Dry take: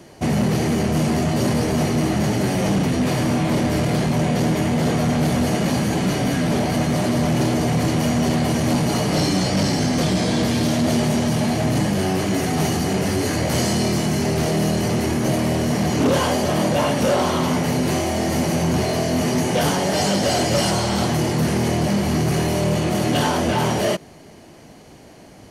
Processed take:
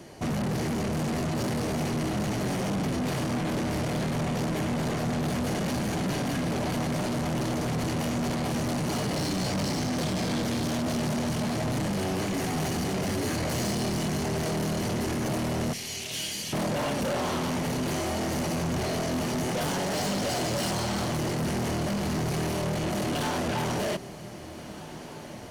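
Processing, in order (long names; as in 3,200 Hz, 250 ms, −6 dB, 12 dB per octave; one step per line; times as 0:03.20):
0:15.73–0:16.53: inverse Chebyshev high-pass filter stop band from 920 Hz, stop band 50 dB
soft clipping −24.5 dBFS, distortion −9 dB
feedback delay with all-pass diffusion 1,613 ms, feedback 42%, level −14.5 dB
level −2 dB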